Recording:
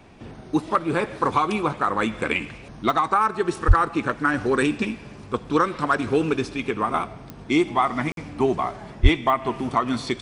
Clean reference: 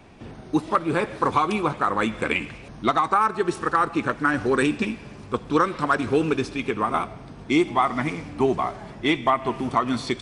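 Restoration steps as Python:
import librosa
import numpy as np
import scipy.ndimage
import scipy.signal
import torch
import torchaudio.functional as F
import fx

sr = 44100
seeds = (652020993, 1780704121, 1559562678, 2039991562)

y = fx.fix_declick_ar(x, sr, threshold=10.0)
y = fx.fix_deplosive(y, sr, at_s=(3.67, 9.02))
y = fx.fix_interpolate(y, sr, at_s=(8.12,), length_ms=52.0)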